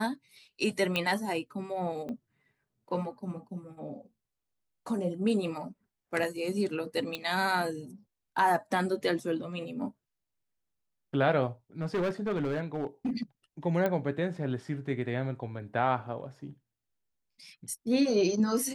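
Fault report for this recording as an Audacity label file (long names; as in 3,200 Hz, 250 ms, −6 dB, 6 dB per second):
0.960000	0.960000	click −15 dBFS
2.090000	2.090000	click −28 dBFS
7.150000	7.150000	click −19 dBFS
11.820000	13.230000	clipping −26 dBFS
13.860000	13.860000	click −17 dBFS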